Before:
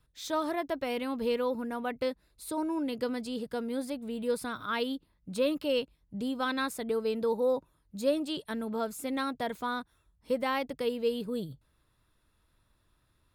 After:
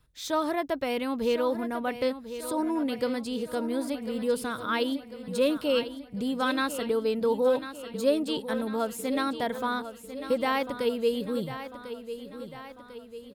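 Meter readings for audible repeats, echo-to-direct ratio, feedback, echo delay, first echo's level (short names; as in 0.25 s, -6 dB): 5, -10.0 dB, 53%, 1.047 s, -11.5 dB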